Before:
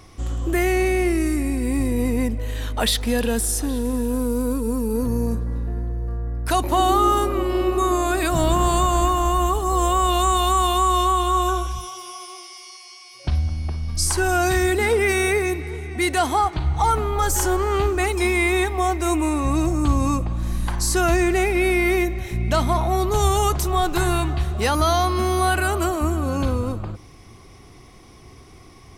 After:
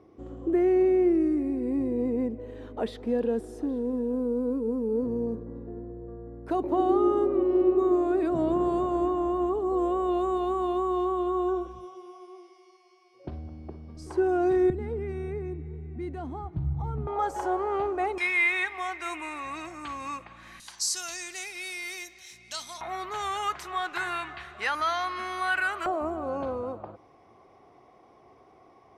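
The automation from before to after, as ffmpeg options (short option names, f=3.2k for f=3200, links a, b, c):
-af "asetnsamples=n=441:p=0,asendcmd='14.7 bandpass f 140;17.07 bandpass f 660;18.18 bandpass f 2000;20.6 bandpass f 5600;22.81 bandpass f 1800;25.86 bandpass f 680',bandpass=f=380:t=q:w=1.8:csg=0"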